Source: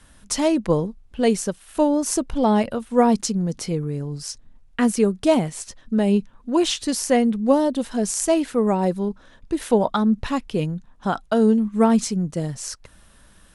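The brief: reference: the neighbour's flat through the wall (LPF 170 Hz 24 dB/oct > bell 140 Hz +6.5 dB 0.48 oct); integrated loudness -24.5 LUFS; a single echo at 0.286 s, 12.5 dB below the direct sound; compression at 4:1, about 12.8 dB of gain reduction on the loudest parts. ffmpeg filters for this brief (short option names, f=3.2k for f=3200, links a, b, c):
-af "acompressor=threshold=-28dB:ratio=4,lowpass=f=170:w=0.5412,lowpass=f=170:w=1.3066,equalizer=f=140:t=o:w=0.48:g=6.5,aecho=1:1:286:0.237,volume=13.5dB"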